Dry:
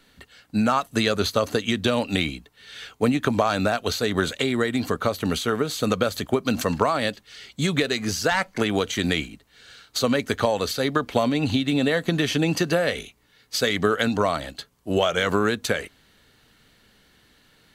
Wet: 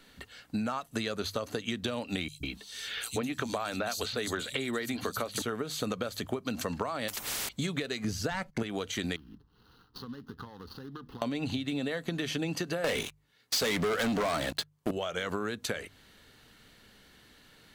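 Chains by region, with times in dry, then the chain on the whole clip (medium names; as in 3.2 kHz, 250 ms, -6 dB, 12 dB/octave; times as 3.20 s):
2.28–5.42 s: treble shelf 2.3 kHz +7.5 dB + hum notches 50/100/150/200 Hz + three bands offset in time highs, lows, mids 120/150 ms, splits 160/4200 Hz
7.08–7.49 s: de-esser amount 30% + treble shelf 12 kHz +11.5 dB + spectrum-flattening compressor 10:1
8.04–8.63 s: gate -46 dBFS, range -20 dB + bass shelf 300 Hz +11.5 dB
9.16–11.22 s: median filter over 25 samples + compression 4:1, threshold -39 dBFS + static phaser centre 2.3 kHz, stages 6
12.84–14.91 s: high-pass 88 Hz + waveshaping leveller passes 5
whole clip: hum notches 50/100/150 Hz; compression 5:1, threshold -31 dBFS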